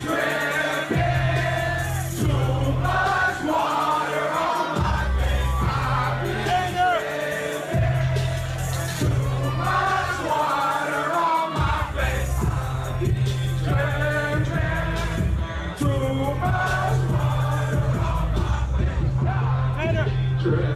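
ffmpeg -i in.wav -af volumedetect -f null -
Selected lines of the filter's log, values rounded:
mean_volume: -22.3 dB
max_volume: -12.1 dB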